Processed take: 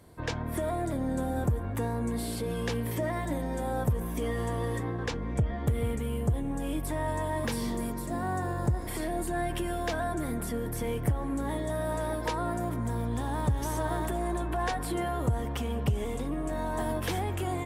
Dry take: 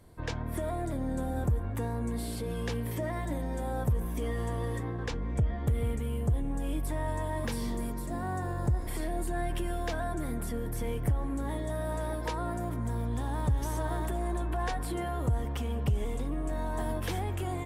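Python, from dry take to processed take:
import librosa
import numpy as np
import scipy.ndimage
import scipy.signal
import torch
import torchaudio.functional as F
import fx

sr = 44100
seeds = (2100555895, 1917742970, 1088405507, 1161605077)

y = fx.highpass(x, sr, hz=94.0, slope=6)
y = y * 10.0 ** (3.5 / 20.0)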